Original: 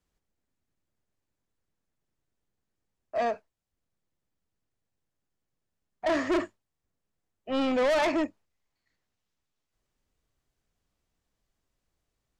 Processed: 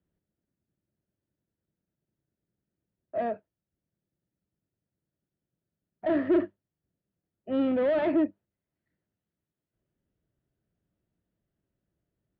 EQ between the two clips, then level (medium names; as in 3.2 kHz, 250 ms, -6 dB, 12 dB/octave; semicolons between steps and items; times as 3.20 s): distance through air 80 m; cabinet simulation 200–3600 Hz, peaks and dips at 250 Hz -6 dB, 460 Hz -6 dB, 800 Hz -8 dB, 1.1 kHz -10 dB, 2.3 kHz -5 dB; tilt EQ -4.5 dB/octave; 0.0 dB